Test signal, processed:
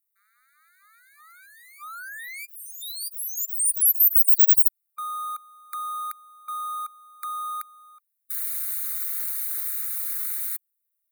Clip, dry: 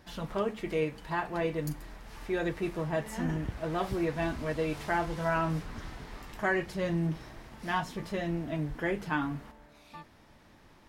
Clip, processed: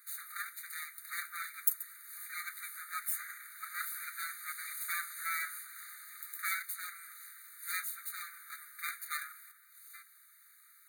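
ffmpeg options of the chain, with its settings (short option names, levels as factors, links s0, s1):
-af "aeval=exprs='abs(val(0))':c=same,aexciter=amount=14.7:drive=1.5:freq=8300,afftfilt=real='re*eq(mod(floor(b*sr/1024/1200),2),1)':imag='im*eq(mod(floor(b*sr/1024/1200),2),1)':win_size=1024:overlap=0.75"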